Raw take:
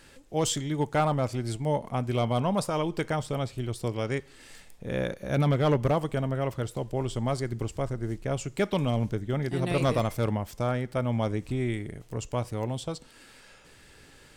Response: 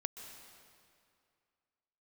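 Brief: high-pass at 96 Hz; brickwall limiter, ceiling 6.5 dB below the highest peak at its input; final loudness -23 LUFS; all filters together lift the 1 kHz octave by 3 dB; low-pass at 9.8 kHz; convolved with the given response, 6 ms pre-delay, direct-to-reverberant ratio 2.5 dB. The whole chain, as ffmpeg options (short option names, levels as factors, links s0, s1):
-filter_complex "[0:a]highpass=96,lowpass=9800,equalizer=f=1000:t=o:g=4,alimiter=limit=0.133:level=0:latency=1,asplit=2[s0][s1];[1:a]atrim=start_sample=2205,adelay=6[s2];[s1][s2]afir=irnorm=-1:irlink=0,volume=0.841[s3];[s0][s3]amix=inputs=2:normalize=0,volume=1.88"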